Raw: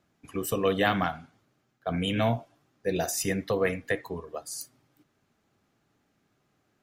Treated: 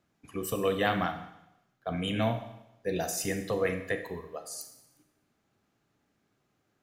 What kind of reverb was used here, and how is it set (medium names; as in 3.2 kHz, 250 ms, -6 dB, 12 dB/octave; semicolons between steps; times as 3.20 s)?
Schroeder reverb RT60 0.86 s, combs from 29 ms, DRR 8 dB; trim -3.5 dB